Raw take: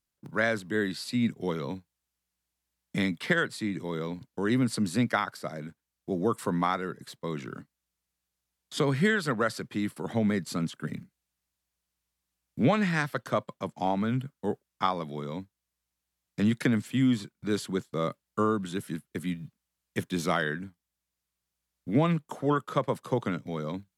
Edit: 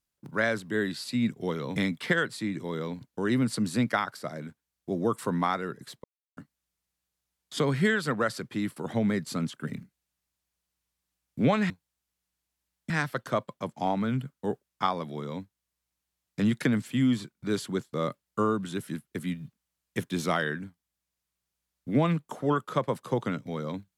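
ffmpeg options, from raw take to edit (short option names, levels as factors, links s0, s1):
-filter_complex "[0:a]asplit=6[s0][s1][s2][s3][s4][s5];[s0]atrim=end=1.762[s6];[s1]atrim=start=2.958:end=7.24,asetpts=PTS-STARTPTS,afade=t=out:st=4.278:d=0.004:c=hsin[s7];[s2]atrim=start=7.24:end=7.57,asetpts=PTS-STARTPTS,volume=0[s8];[s3]atrim=start=7.57:end=12.902,asetpts=PTS-STARTPTS,afade=t=in:d=0.004:c=hsin[s9];[s4]atrim=start=1.758:end=2.962[s10];[s5]atrim=start=12.898[s11];[s7][s8][s9]concat=n=3:v=0:a=1[s12];[s6][s12]acrossfade=d=0.004:c1=hsin:c2=hsin[s13];[s13][s10]acrossfade=d=0.004:c1=hsin:c2=hsin[s14];[s14][s11]acrossfade=d=0.004:c1=hsin:c2=hsin"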